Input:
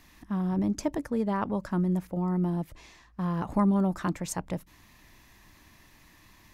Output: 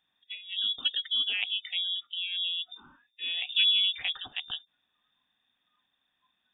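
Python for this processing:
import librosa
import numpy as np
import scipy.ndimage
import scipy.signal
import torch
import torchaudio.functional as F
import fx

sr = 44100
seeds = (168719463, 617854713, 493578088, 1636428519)

y = fx.freq_invert(x, sr, carrier_hz=3600)
y = fx.noise_reduce_blind(y, sr, reduce_db=21)
y = fx.small_body(y, sr, hz=(250.0, 740.0), ring_ms=40, db=9)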